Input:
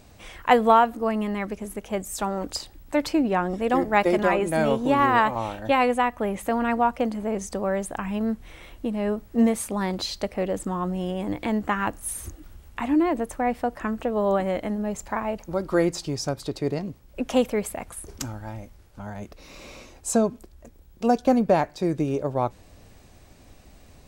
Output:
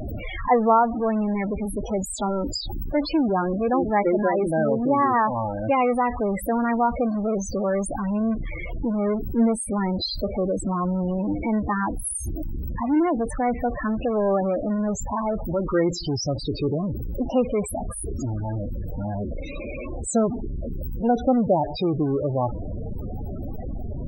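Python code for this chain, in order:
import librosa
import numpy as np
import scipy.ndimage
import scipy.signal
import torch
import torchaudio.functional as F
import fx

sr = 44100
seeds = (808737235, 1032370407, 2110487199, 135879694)

y = x + 0.5 * 10.0 ** (-20.0 / 20.0) * np.sign(x)
y = fx.spec_topn(y, sr, count=16)
y = y * 10.0 ** (-2.5 / 20.0)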